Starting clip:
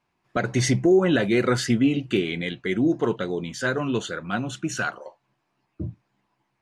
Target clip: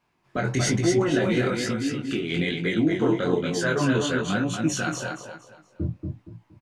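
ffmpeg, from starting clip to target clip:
ffmpeg -i in.wav -filter_complex "[0:a]asettb=1/sr,asplit=3[link_01][link_02][link_03];[link_01]atrim=end=1.464[link_04];[link_02]atrim=start=1.46:end=2.3,asetpts=PTS-STARTPTS,afade=type=in:duration=0.004:curve=qsin,afade=type=out:start_time=0.836:duration=0.004:curve=qsin,acompressor=threshold=-28dB:ratio=10[link_05];[link_03]atrim=start=2.296[link_06];[link_04][link_05]acrossfade=duration=0.004:curve1=hsin:curve2=qsin[link_07];[link_07][link_06]acrossfade=duration=0.004:curve1=qsin:curve2=hsin,asettb=1/sr,asplit=3[link_08][link_09][link_10];[link_08]atrim=end=4.314[link_11];[link_09]atrim=start=4.31:end=4.93,asetpts=PTS-STARTPTS,afade=type=in:duration=0.004:curve=qsin,afade=type=out:start_time=0.616:duration=0.004:curve=qsin,equalizer=frequency=1200:width=0.66:gain=-6.5[link_12];[link_10]atrim=start=4.926[link_13];[link_11][link_12]acrossfade=duration=0.004:curve1=hsin:curve2=qsin[link_14];[link_14][link_13]acrossfade=duration=0.004:curve1=qsin:curve2=hsin,alimiter=limit=-18.5dB:level=0:latency=1:release=29,aecho=1:1:234|468|702|936:0.596|0.185|0.0572|0.0177,flanger=delay=17.5:depth=6.5:speed=1.1,volume=6.5dB" out.wav

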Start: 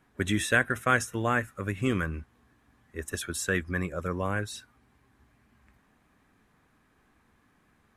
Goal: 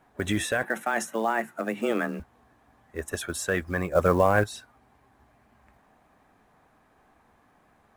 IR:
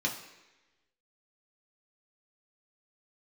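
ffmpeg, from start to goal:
-filter_complex "[0:a]equalizer=frequency=710:width=1.2:gain=12,alimiter=limit=-15dB:level=0:latency=1:release=17,asettb=1/sr,asplit=3[link_01][link_02][link_03];[link_01]atrim=end=3.954[link_04];[link_02]atrim=start=3.95:end=4.44,asetpts=PTS-STARTPTS,afade=type=in:duration=0.004:curve=qsin,afade=type=out:start_time=0.486:duration=0.004:curve=qsin,acontrast=82[link_05];[link_03]atrim=start=4.436[link_06];[link_04][link_05]acrossfade=duration=0.004:curve1=hsin:curve2=qsin[link_07];[link_07][link_06]acrossfade=duration=0.004:curve1=qsin:curve2=hsin,acrusher=bits=7:mode=log:mix=0:aa=0.000001,asettb=1/sr,asplit=3[link_08][link_09][link_10];[link_08]atrim=end=0.634[link_11];[link_09]atrim=start=0.63:end=2.2,asetpts=PTS-STARTPTS,afade=type=in:duration=0.004:curve=qsin,afade=type=out:start_time=1.566:duration=0.004:curve=qsin,afreqshift=110[link_12];[link_10]atrim=start=2.196[link_13];[link_11][link_12]acrossfade=duration=0.004:curve1=hsin:curve2=qsin[link_14];[link_14][link_13]acrossfade=duration=0.004:curve1=qsin:curve2=hsin"

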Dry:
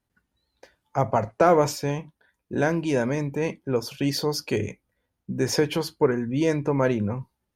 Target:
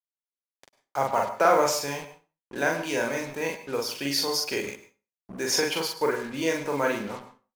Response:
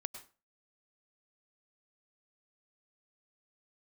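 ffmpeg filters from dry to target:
-filter_complex "[0:a]agate=range=-33dB:threshold=-49dB:ratio=3:detection=peak,highpass=frequency=1100:poles=1,asplit=2[link_01][link_02];[link_02]adelay=43,volume=-2dB[link_03];[link_01][link_03]amix=inputs=2:normalize=0,acrusher=bits=6:mix=0:aa=0.5,asplit=2[link_04][link_05];[1:a]atrim=start_sample=2205[link_06];[link_05][link_06]afir=irnorm=-1:irlink=0,volume=8.5dB[link_07];[link_04][link_07]amix=inputs=2:normalize=0,volume=-7.5dB"

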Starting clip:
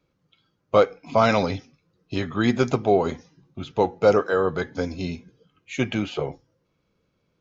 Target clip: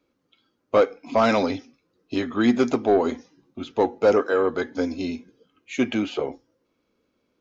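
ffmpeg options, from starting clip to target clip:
ffmpeg -i in.wav -af "lowshelf=frequency=200:width_type=q:width=3:gain=-6.5,asoftclip=type=tanh:threshold=-8.5dB" out.wav

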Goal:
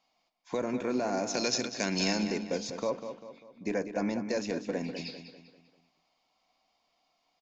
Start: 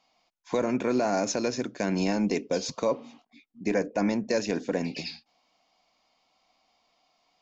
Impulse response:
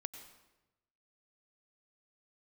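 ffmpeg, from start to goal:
-filter_complex "[0:a]asettb=1/sr,asplit=3[link_01][link_02][link_03];[link_01]atrim=end=1.344[link_04];[link_02]atrim=start=1.34:end=2.22,asetpts=PTS-STARTPTS,afade=type=in:duration=0.004:curve=qsin,afade=type=out:start_time=0.876:duration=0.004:curve=qsin,equalizer=frequency=5100:width_type=o:width=2.6:gain=13.5[link_05];[link_03]atrim=start=2.216[link_06];[link_04][link_05]acrossfade=duration=0.004:curve1=hsin:curve2=qsin[link_07];[link_07][link_06]acrossfade=duration=0.004:curve1=qsin:curve2=hsin,asplit=2[link_08][link_09];[link_09]adelay=197,lowpass=frequency=4800:poles=1,volume=-9dB,asplit=2[link_10][link_11];[link_11]adelay=197,lowpass=frequency=4800:poles=1,volume=0.45,asplit=2[link_12][link_13];[link_13]adelay=197,lowpass=frequency=4800:poles=1,volume=0.45,asplit=2[link_14][link_15];[link_15]adelay=197,lowpass=frequency=4800:poles=1,volume=0.45,asplit=2[link_16][link_17];[link_17]adelay=197,lowpass=frequency=4800:poles=1,volume=0.45[link_18];[link_10][link_12][link_14][link_16][link_18]amix=inputs=5:normalize=0[link_19];[link_08][link_19]amix=inputs=2:normalize=0,volume=-5.5dB"

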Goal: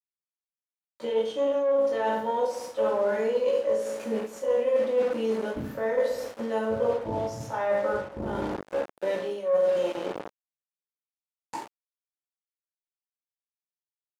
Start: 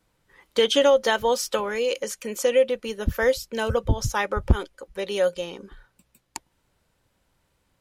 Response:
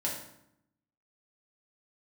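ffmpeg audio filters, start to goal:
-filter_complex "[0:a]aemphasis=mode=production:type=50fm,atempo=0.55[link_01];[1:a]atrim=start_sample=2205[link_02];[link_01][link_02]afir=irnorm=-1:irlink=0,acrusher=bits=4:mix=0:aa=0.000001,aeval=exprs='(tanh(2*val(0)+0.65)-tanh(0.65))/2':channel_layout=same,areverse,acompressor=threshold=-27dB:ratio=16,areverse,bandpass=frequency=510:width_type=q:width=0.94:csg=0,volume=7.5dB"

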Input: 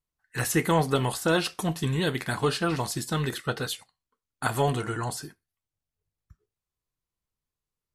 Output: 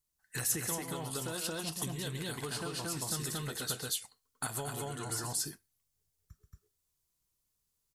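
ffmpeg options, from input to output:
ffmpeg -i in.wav -filter_complex "[0:a]asplit=2[link_01][link_02];[link_02]aecho=0:1:131.2|227.4:0.316|1[link_03];[link_01][link_03]amix=inputs=2:normalize=0,acompressor=threshold=-34dB:ratio=10,asoftclip=type=tanh:threshold=-22.5dB,bass=frequency=250:gain=1,treble=frequency=4000:gain=12,volume=-2.5dB" out.wav

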